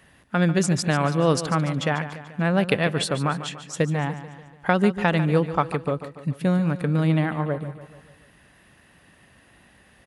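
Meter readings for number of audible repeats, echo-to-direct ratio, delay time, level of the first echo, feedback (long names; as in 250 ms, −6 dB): 5, −11.0 dB, 145 ms, −12.5 dB, 53%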